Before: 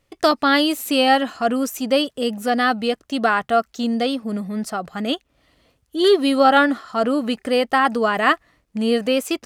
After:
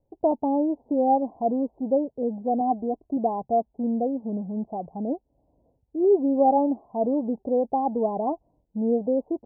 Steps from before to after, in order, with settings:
0:02.60–0:03.17: comb filter 2.9 ms, depth 71%
Butterworth low-pass 940 Hz 96 dB per octave
level −4 dB

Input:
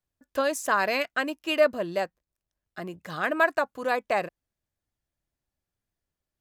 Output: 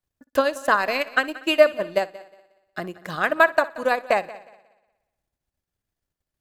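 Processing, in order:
transient designer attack +6 dB, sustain −11 dB
echo machine with several playback heads 60 ms, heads first and third, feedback 44%, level −19.5 dB
level +2 dB

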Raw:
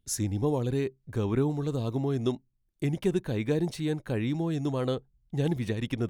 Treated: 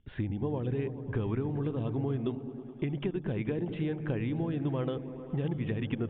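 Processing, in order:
Butterworth low-pass 3,400 Hz 96 dB per octave
downward compressor 10 to 1, threshold −34 dBFS, peak gain reduction 13.5 dB
on a send: echo whose low-pass opens from repeat to repeat 106 ms, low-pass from 200 Hz, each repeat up 1 octave, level −6 dB
on the sum: level +5 dB

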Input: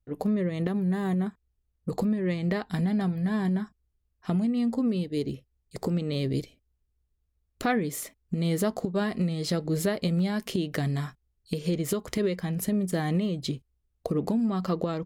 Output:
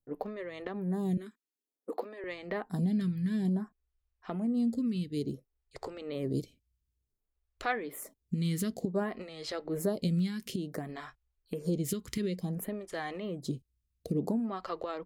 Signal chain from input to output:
0:01.17–0:02.24: Butterworth high-pass 250 Hz 48 dB per octave
0:10.27–0:10.89: downward compressor 4 to 1, threshold −28 dBFS, peak gain reduction 5 dB
phaser with staggered stages 0.56 Hz
level −2.5 dB

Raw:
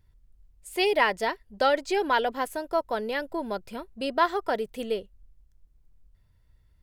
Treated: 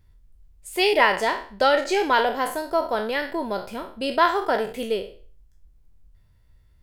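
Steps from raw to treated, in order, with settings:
peak hold with a decay on every bin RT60 0.42 s
level +3 dB

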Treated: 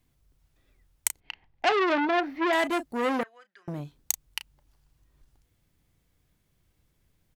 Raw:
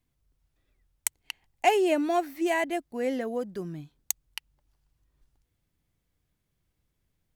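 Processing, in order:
double-tracking delay 34 ms −14 dB
in parallel at +1.5 dB: brickwall limiter −20.5 dBFS, peak gain reduction 11 dB
0:01.20–0:02.53: on the sum: high-frequency loss of the air 290 metres
0:03.23–0:03.68: four-pole ladder band-pass 2,100 Hz, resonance 45%
saturating transformer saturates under 2,900 Hz

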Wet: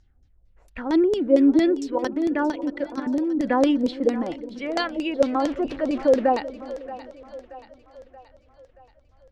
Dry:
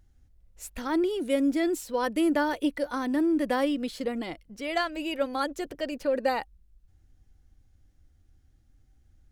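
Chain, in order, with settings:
0:05.22–0:06.35: converter with a step at zero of −36 dBFS
dynamic equaliser 270 Hz, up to +8 dB, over −39 dBFS, Q 0.97
0:01.94–0:03.45: output level in coarse steps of 12 dB
auto-filter low-pass saw down 4.4 Hz 450–6,300 Hz
echo with a time of its own for lows and highs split 490 Hz, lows 363 ms, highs 628 ms, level −14.5 dB

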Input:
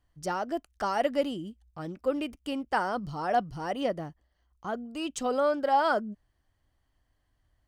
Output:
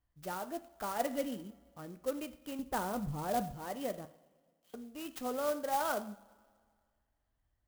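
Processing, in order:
0:00.99–0:01.44: comb filter 4.1 ms, depth 58%
0:02.59–0:03.52: spectral tilt −3 dB per octave
0:04.05–0:04.74: Butterworth high-pass 3,000 Hz
coupled-rooms reverb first 0.52 s, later 2 s, from −18 dB, DRR 9 dB
converter with an unsteady clock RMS 0.049 ms
level −9 dB

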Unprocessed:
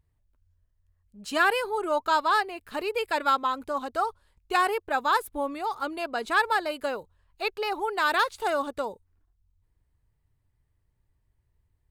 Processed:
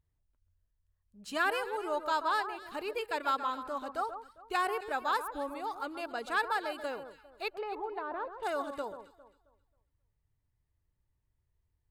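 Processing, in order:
0:07.50–0:08.43: treble cut that deepens with the level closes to 770 Hz, closed at −24 dBFS
delay that swaps between a low-pass and a high-pass 134 ms, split 1,500 Hz, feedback 51%, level −9 dB
level −7.5 dB

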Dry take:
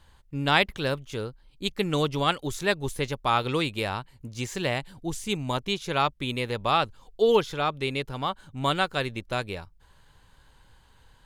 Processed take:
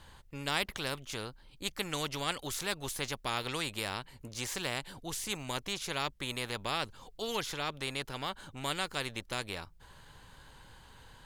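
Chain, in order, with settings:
every bin compressed towards the loudest bin 2 to 1
level −9 dB

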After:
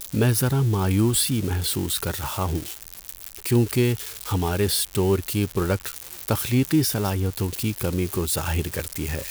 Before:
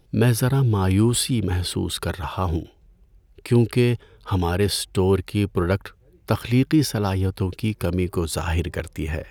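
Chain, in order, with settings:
spike at every zero crossing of −19.5 dBFS
level −2 dB

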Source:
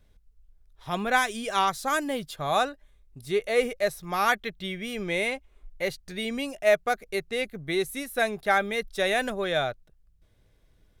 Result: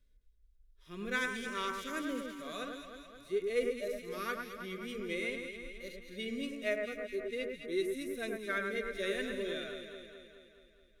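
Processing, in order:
harmonic and percussive parts rebalanced percussive −18 dB
phaser with its sweep stopped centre 330 Hz, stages 4
delay that swaps between a low-pass and a high-pass 106 ms, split 2,100 Hz, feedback 77%, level −4 dB
level −6 dB

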